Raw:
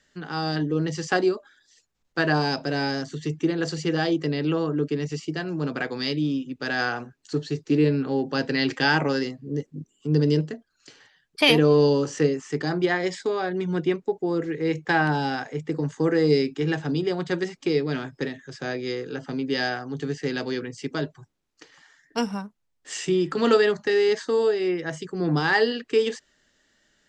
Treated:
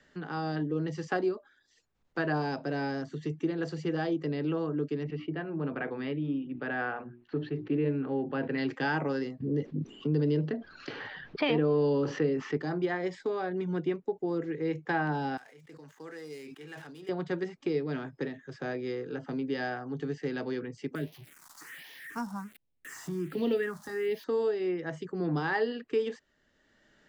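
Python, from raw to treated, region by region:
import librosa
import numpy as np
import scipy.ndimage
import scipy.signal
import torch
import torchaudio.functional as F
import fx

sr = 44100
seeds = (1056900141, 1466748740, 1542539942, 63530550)

y = fx.chain(x, sr, fx.lowpass(hz=3000.0, slope=24),
    fx.hum_notches(base_hz=60, count=6),
    fx.sustainer(db_per_s=140.0), at=(5.03, 8.58))
y = fx.chain(y, sr, fx.lowpass(hz=4600.0, slope=24),
    fx.env_flatten(amount_pct=50), at=(9.4, 12.57))
y = fx.chain(y, sr, fx.median_filter(points=9),
    fx.pre_emphasis(coefficient=0.97),
    fx.sustainer(db_per_s=42.0), at=(15.37, 17.09))
y = fx.chain(y, sr, fx.crossing_spikes(level_db=-23.5),
    fx.phaser_stages(stages=4, low_hz=410.0, high_hz=1400.0, hz=1.3, feedback_pct=25), at=(20.95, 24.24))
y = fx.lowpass(y, sr, hz=1600.0, slope=6)
y = fx.low_shelf(y, sr, hz=76.0, db=-6.0)
y = fx.band_squash(y, sr, depth_pct=40)
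y = F.gain(torch.from_numpy(y), -6.0).numpy()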